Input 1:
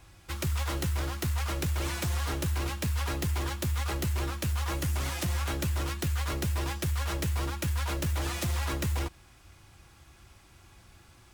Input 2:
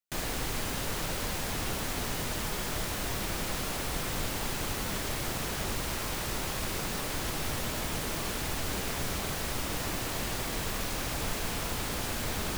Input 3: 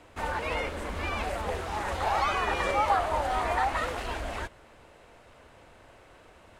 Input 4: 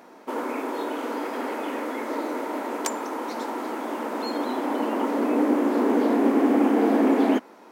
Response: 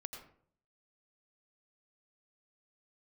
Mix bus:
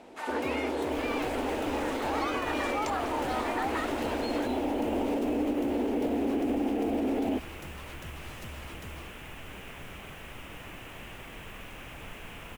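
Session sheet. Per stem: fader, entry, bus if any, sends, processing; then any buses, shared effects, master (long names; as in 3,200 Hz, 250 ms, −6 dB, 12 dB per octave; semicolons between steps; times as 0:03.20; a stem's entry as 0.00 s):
−16.0 dB, 0.00 s, no send, no processing
−10.5 dB, 0.80 s, no send, high shelf with overshoot 3,500 Hz −7.5 dB, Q 3
−2.0 dB, 0.00 s, no send, Bessel high-pass filter 770 Hz, order 2
−1.0 dB, 0.00 s, no send, low-pass filter 3,900 Hz; flat-topped bell 1,400 Hz −12.5 dB 1.2 octaves; downward compressor, threshold −22 dBFS, peak gain reduction 7 dB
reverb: not used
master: brickwall limiter −21 dBFS, peak gain reduction 6 dB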